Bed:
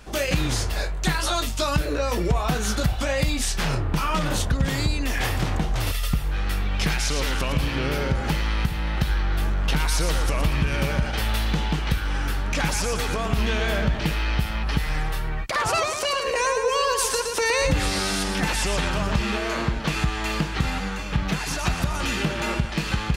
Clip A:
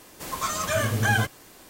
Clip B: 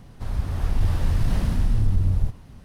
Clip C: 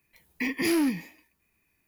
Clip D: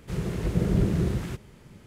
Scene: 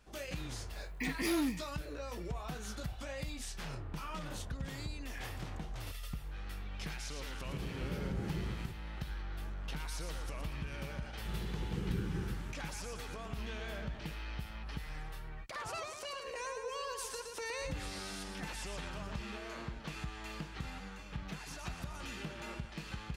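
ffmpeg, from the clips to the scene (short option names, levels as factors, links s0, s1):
-filter_complex "[4:a]asplit=2[s0][s1];[0:a]volume=0.119[s2];[s0]alimiter=limit=0.141:level=0:latency=1:release=71[s3];[s1]asuperstop=centerf=660:order=4:qfactor=2.2[s4];[3:a]atrim=end=1.87,asetpts=PTS-STARTPTS,volume=0.376,afade=t=in:d=0.004:c=hsin,afade=t=out:st=1.866:d=0.004:c=hsin,adelay=600[s5];[s3]atrim=end=1.86,asetpts=PTS-STARTPTS,volume=0.211,afade=t=in:d=0.004:c=hsin,afade=t=out:st=1.856:d=0.004:c=hsin,adelay=7360[s6];[s4]atrim=end=1.86,asetpts=PTS-STARTPTS,volume=0.211,afade=t=in:d=0.004:c=hsin,afade=t=out:st=1.856:d=0.004:c=hsin,adelay=11160[s7];[s2][s5][s6][s7]amix=inputs=4:normalize=0"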